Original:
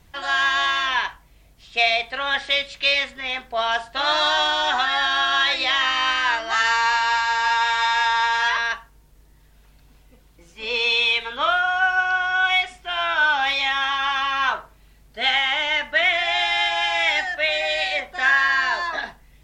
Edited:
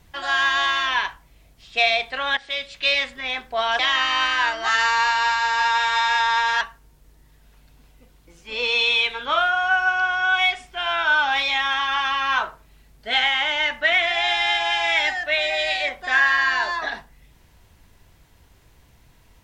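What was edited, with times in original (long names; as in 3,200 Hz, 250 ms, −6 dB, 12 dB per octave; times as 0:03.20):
0:02.37–0:03.13: fade in equal-power, from −14 dB
0:03.79–0:05.65: remove
0:08.47–0:08.72: remove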